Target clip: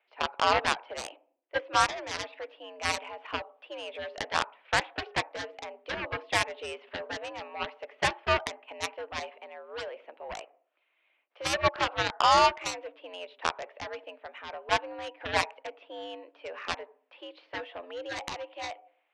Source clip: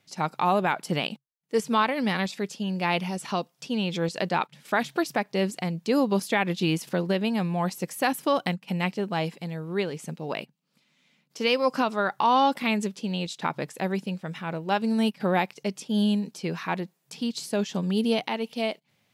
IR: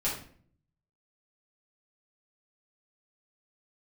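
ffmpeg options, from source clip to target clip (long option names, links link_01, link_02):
-filter_complex "[0:a]highpass=frequency=420:width_type=q:width=0.5412,highpass=frequency=420:width_type=q:width=1.307,lowpass=frequency=2800:width_type=q:width=0.5176,lowpass=frequency=2800:width_type=q:width=0.7071,lowpass=frequency=2800:width_type=q:width=1.932,afreqshift=80,asplit=2[link_01][link_02];[1:a]atrim=start_sample=2205,lowpass=1000[link_03];[link_02][link_03]afir=irnorm=-1:irlink=0,volume=-19dB[link_04];[link_01][link_04]amix=inputs=2:normalize=0,aeval=exprs='0.299*(cos(1*acos(clip(val(0)/0.299,-1,1)))-cos(1*PI/2))+0.0168*(cos(3*acos(clip(val(0)/0.299,-1,1)))-cos(3*PI/2))+0.0668*(cos(7*acos(clip(val(0)/0.299,-1,1)))-cos(7*PI/2))':channel_layout=same"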